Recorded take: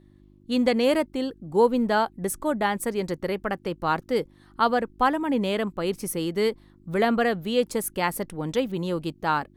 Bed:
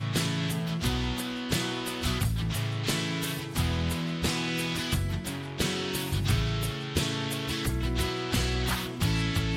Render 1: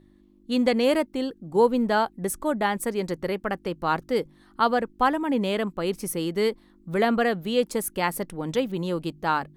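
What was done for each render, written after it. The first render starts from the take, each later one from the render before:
hum removal 50 Hz, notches 3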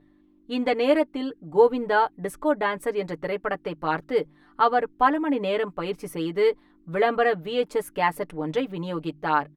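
bass and treble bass −7 dB, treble −14 dB
comb filter 6.8 ms, depth 78%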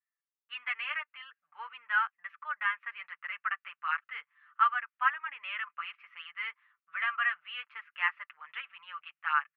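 noise gate with hold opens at −49 dBFS
elliptic band-pass filter 1,200–2,800 Hz, stop band 60 dB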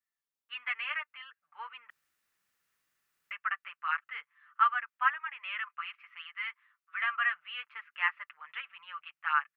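0:01.90–0:03.31: fill with room tone
0:05.18–0:07.00: high-pass filter 580 Hz → 920 Hz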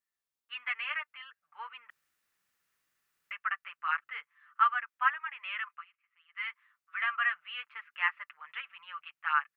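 0:03.78–0:04.19: low-shelf EQ 430 Hz +7 dB
0:05.73–0:06.40: duck −22 dB, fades 0.12 s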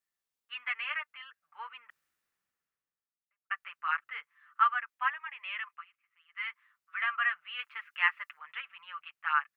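0:01.66–0:03.50: fade out and dull
0:04.93–0:05.79: parametric band 1,400 Hz −6.5 dB 0.38 octaves
0:07.59–0:08.39: high-shelf EQ 2,400 Hz +7 dB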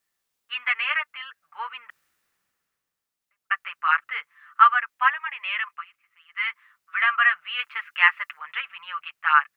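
level +10.5 dB
brickwall limiter −3 dBFS, peak gain reduction 1.5 dB

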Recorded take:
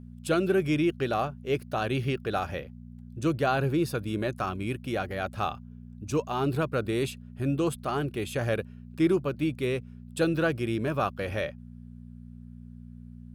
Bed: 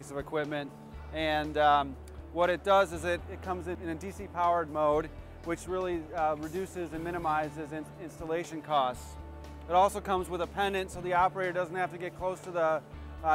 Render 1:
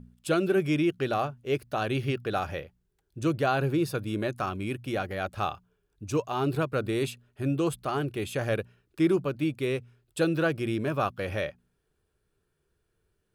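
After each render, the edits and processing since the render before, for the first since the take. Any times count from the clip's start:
hum removal 60 Hz, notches 4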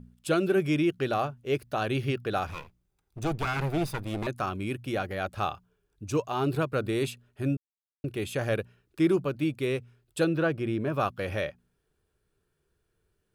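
0:02.47–0:04.27: lower of the sound and its delayed copy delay 0.81 ms
0:07.57–0:08.04: silence
0:10.24–0:10.92: high-shelf EQ 5,100 Hz → 2,600 Hz −11 dB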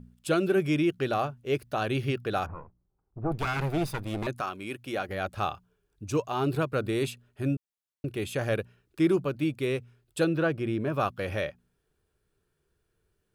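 0:02.46–0:03.32: low-pass filter 1,200 Hz 24 dB per octave
0:04.40–0:05.08: high-pass filter 630 Hz → 240 Hz 6 dB per octave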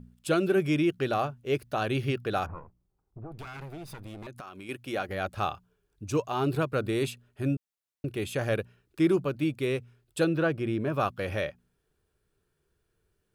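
0:02.58–0:04.69: downward compressor, threshold −39 dBFS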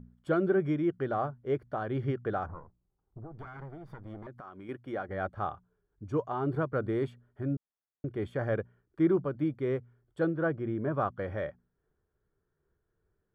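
Savitzky-Golay smoothing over 41 samples
amplitude modulation by smooth noise, depth 55%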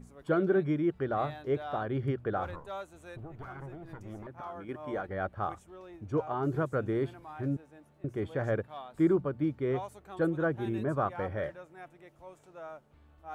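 mix in bed −16.5 dB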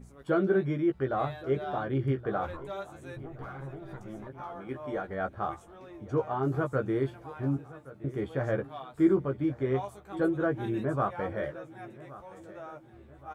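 double-tracking delay 15 ms −5 dB
repeating echo 1,121 ms, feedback 47%, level −18 dB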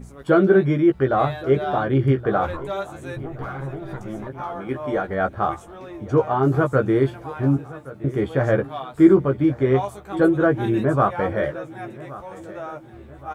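level +10.5 dB

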